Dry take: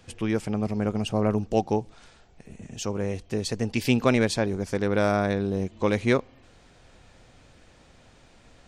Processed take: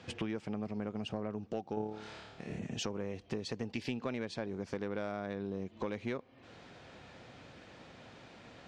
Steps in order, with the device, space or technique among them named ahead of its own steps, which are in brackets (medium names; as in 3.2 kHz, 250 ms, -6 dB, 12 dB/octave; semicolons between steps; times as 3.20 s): AM radio (band-pass 120–4400 Hz; compression 8:1, threshold -37 dBFS, peak gain reduction 20.5 dB; saturation -26.5 dBFS, distortion -23 dB); 1.74–2.59 s: flutter echo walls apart 4.8 m, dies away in 0.88 s; trim +3 dB